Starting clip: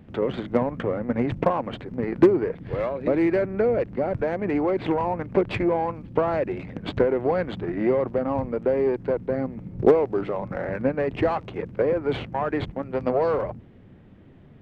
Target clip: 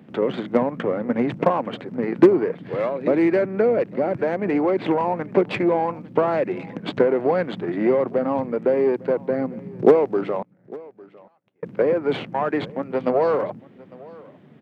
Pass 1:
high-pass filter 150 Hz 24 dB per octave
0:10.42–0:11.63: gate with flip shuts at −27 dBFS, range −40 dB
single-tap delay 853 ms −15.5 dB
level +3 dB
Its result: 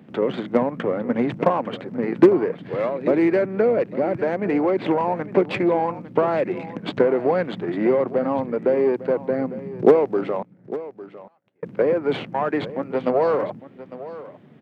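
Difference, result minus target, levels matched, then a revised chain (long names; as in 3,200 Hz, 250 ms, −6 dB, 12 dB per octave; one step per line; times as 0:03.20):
echo-to-direct +6.5 dB
high-pass filter 150 Hz 24 dB per octave
0:10.42–0:11.63: gate with flip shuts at −27 dBFS, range −40 dB
single-tap delay 853 ms −22 dB
level +3 dB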